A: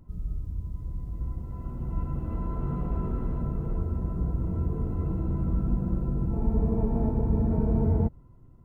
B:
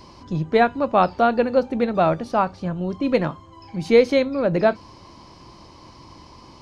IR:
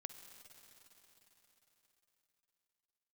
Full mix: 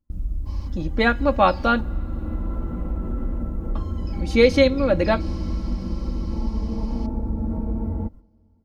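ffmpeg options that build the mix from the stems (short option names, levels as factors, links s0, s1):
-filter_complex "[0:a]agate=range=0.0316:threshold=0.0141:ratio=16:detection=peak,acompressor=threshold=0.0447:ratio=6,volume=1.41,asplit=2[s0][s1];[s1]volume=0.158[s2];[1:a]adynamicequalizer=threshold=0.0224:dfrequency=1700:dqfactor=0.7:tfrequency=1700:tqfactor=0.7:attack=5:release=100:ratio=0.375:range=2.5:mode=boostabove:tftype=highshelf,adelay=450,volume=0.708,asplit=3[s3][s4][s5];[s3]atrim=end=1.81,asetpts=PTS-STARTPTS,afade=t=out:st=1.806:d=0.004:c=hsin[s6];[s4]atrim=start=1.81:end=3.75,asetpts=PTS-STARTPTS,volume=0[s7];[s5]atrim=start=3.75,asetpts=PTS-STARTPTS,afade=t=in:d=0.004:c=hsin[s8];[s6][s7][s8]concat=n=3:v=0:a=1,asplit=2[s9][s10];[s10]volume=0.237[s11];[2:a]atrim=start_sample=2205[s12];[s2][s11]amix=inputs=2:normalize=0[s13];[s13][s12]afir=irnorm=-1:irlink=0[s14];[s0][s9][s14]amix=inputs=3:normalize=0,bandreject=f=1000:w=29,aecho=1:1:3.6:0.69"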